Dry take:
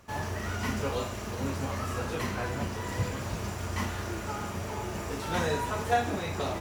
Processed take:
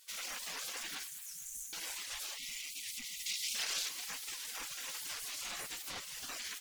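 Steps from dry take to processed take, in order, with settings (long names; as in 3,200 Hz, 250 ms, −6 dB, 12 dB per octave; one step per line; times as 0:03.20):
convolution reverb, pre-delay 3 ms, DRR 12 dB
reverb reduction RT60 0.96 s
soft clipping −30 dBFS, distortion −10 dB
0:05.61–0:06.29: low-shelf EQ 280 Hz −11 dB
gate on every frequency bin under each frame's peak −25 dB weak
0:01.07–0:01.73: Chebyshev band-stop filter 220–6,300 Hz, order 5
brickwall limiter −42.5 dBFS, peak gain reduction 8.5 dB
0:03.26–0:03.89: parametric band 4,200 Hz +8 dB 2 octaves
feedback echo with a high-pass in the loop 229 ms, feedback 64%, high-pass 1,100 Hz, level −14.5 dB
0:02.37–0:03.56: gain on a spectral selection 280–1,900 Hz −21 dB
wow of a warped record 78 rpm, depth 250 cents
level +10.5 dB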